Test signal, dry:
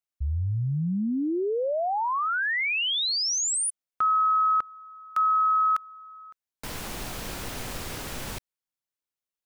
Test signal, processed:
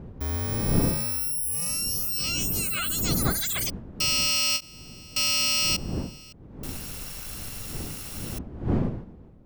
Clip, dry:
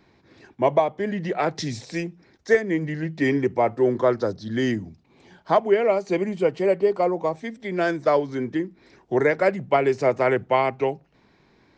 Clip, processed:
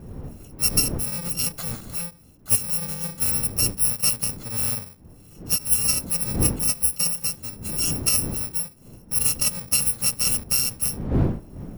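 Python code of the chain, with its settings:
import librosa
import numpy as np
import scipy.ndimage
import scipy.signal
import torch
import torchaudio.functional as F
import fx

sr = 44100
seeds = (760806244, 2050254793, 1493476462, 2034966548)

y = fx.bit_reversed(x, sr, seeds[0], block=128)
y = fx.dmg_wind(y, sr, seeds[1], corner_hz=210.0, level_db=-31.0)
y = fx.end_taper(y, sr, db_per_s=350.0)
y = F.gain(torch.from_numpy(y), -2.0).numpy()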